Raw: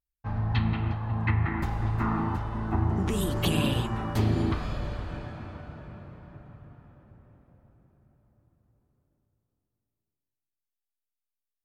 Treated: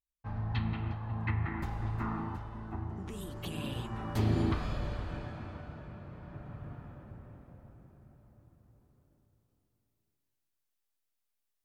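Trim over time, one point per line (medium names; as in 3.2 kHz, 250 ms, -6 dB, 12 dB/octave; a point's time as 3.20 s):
1.95 s -7 dB
2.99 s -14 dB
3.51 s -14 dB
4.33 s -3 dB
5.99 s -3 dB
6.70 s +5 dB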